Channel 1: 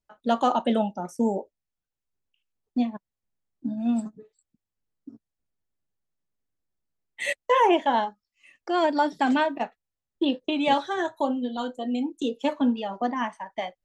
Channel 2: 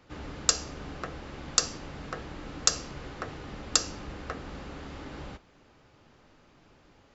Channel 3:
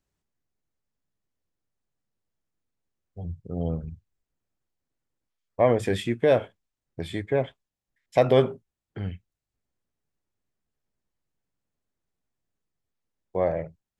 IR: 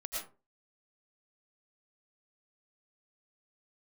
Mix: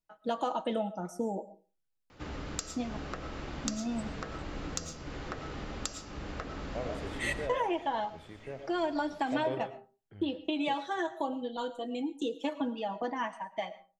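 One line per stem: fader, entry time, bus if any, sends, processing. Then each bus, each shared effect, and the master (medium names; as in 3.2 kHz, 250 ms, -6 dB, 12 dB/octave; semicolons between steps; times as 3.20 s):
-6.0 dB, 0.00 s, send -14.5 dB, comb 6.2 ms, depth 52%; compression 6:1, threshold -23 dBFS, peak gain reduction 10 dB
-0.5 dB, 2.10 s, send -4.5 dB, compression 6:1, threshold -38 dBFS, peak gain reduction 20 dB
-4.5 dB, 1.15 s, send -19 dB, auto duck -18 dB, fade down 1.95 s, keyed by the first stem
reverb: on, RT60 0.35 s, pre-delay 70 ms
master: none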